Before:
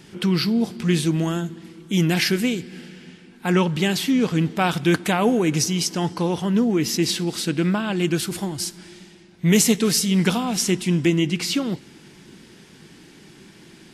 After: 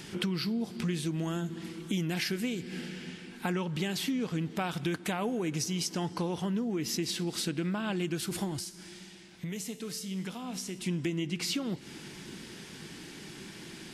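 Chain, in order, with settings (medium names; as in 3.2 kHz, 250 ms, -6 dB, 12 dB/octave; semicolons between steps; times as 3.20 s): compression 6:1, threshold -30 dBFS, peak gain reduction 16.5 dB; 8.59–10.79 s: feedback comb 63 Hz, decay 1.1 s, harmonics all, mix 60%; tape noise reduction on one side only encoder only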